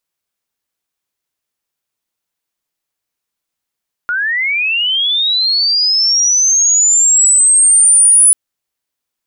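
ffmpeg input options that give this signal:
-f lavfi -i "aevalsrc='pow(10,(-13.5+9.5*t/4.24)/20)*sin(2*PI*(1400*t+8600*t*t/(2*4.24)))':d=4.24:s=44100"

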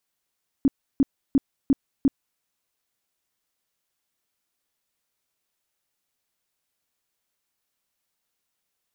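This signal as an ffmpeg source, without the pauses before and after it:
-f lavfi -i "aevalsrc='0.211*sin(2*PI*273*mod(t,0.35))*lt(mod(t,0.35),8/273)':d=1.75:s=44100"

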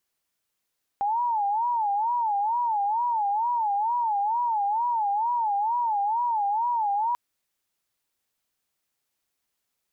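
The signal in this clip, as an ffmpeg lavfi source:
-f lavfi -i "aevalsrc='0.0794*sin(2*PI*(885.5*t-85.5/(2*PI*2.2)*sin(2*PI*2.2*t)))':d=6.14:s=44100"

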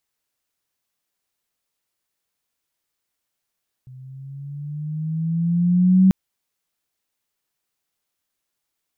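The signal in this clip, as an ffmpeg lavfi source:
-f lavfi -i "aevalsrc='pow(10,(-9+29*(t/2.24-1))/20)*sin(2*PI*127*2.24/(7*log(2)/12)*(exp(7*log(2)/12*t/2.24)-1))':d=2.24:s=44100"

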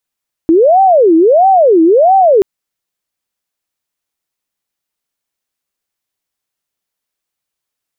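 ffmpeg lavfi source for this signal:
-f lavfi -i "aevalsrc='0.631*sin(2*PI*(549*t-228/(2*PI*1.5)*sin(2*PI*1.5*t)))':d=1.93:s=44100"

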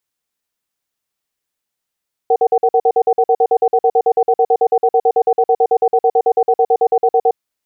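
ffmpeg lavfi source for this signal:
-f lavfi -i "aevalsrc='0.266*(sin(2*PI*464*t)+sin(2*PI*756*t))*clip(min(mod(t,0.11),0.06-mod(t,0.11))/0.005,0,1)':d=5.04:s=44100"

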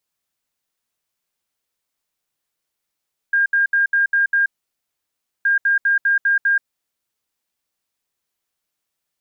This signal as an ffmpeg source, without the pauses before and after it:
-f lavfi -i "aevalsrc='0.224*sin(2*PI*1610*t)*clip(min(mod(mod(t,2.12),0.2),0.13-mod(mod(t,2.12),0.2))/0.005,0,1)*lt(mod(t,2.12),1.2)':d=4.24:s=44100"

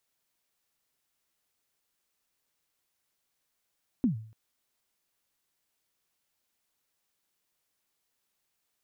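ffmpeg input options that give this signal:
-f lavfi -i "aevalsrc='0.112*pow(10,-3*t/0.5)*sin(2*PI*(280*0.116/log(110/280)*(exp(log(110/280)*min(t,0.116)/0.116)-1)+110*max(t-0.116,0)))':d=0.29:s=44100"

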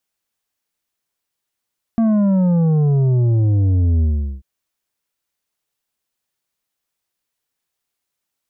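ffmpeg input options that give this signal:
-f lavfi -i "aevalsrc='0.224*clip((2.44-t)/0.4,0,1)*tanh(2.37*sin(2*PI*230*2.44/log(65/230)*(exp(log(65/230)*t/2.44)-1)))/tanh(2.37)':d=2.44:s=44100"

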